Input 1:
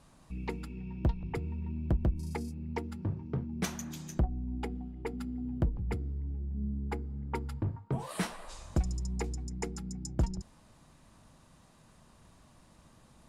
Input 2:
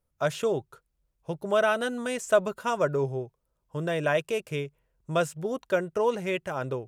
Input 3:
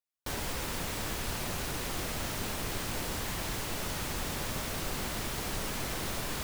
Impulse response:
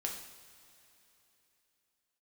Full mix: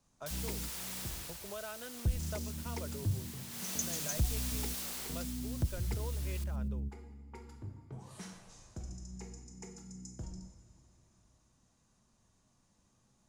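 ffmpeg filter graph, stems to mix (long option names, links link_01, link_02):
-filter_complex "[0:a]equalizer=frequency=100:width_type=o:width=0.67:gain=6,equalizer=frequency=250:width_type=o:width=0.67:gain=3,equalizer=frequency=6300:width_type=o:width=0.67:gain=12,volume=-3dB,asplit=3[link_01][link_02][link_03];[link_01]atrim=end=1.16,asetpts=PTS-STARTPTS,afade=type=out:start_time=1.156:duration=0.004:curve=hsin[link_04];[link_02]atrim=start=1.16:end=2.05,asetpts=PTS-STARTPTS,volume=0[link_05];[link_03]atrim=start=2.05,asetpts=PTS-STARTPTS,afade=type=in:duration=0.004:curve=hsin[link_06];[link_04][link_05][link_06]concat=n=3:v=0:a=1,asplit=2[link_07][link_08];[link_08]volume=-13dB[link_09];[1:a]volume=-15dB,asplit=2[link_10][link_11];[2:a]highpass=390,highshelf=frequency=3300:gain=11,volume=-2.5dB,afade=type=out:start_time=1:duration=0.39:silence=0.473151,afade=type=in:start_time=3.48:duration=0.24:silence=0.354813,afade=type=out:start_time=4.77:duration=0.63:silence=0.334965,asplit=2[link_12][link_13];[link_13]volume=-15dB[link_14];[link_11]apad=whole_len=585867[link_15];[link_07][link_15]sidechaingate=range=-33dB:threshold=-55dB:ratio=16:detection=peak[link_16];[3:a]atrim=start_sample=2205[link_17];[link_09][link_17]afir=irnorm=-1:irlink=0[link_18];[link_14]aecho=0:1:121|242|363|484|605|726:1|0.4|0.16|0.064|0.0256|0.0102[link_19];[link_16][link_10][link_12][link_18][link_19]amix=inputs=5:normalize=0,acrossover=split=130|3000[link_20][link_21][link_22];[link_21]acompressor=threshold=-46dB:ratio=2[link_23];[link_20][link_23][link_22]amix=inputs=3:normalize=0,asoftclip=type=tanh:threshold=-20.5dB"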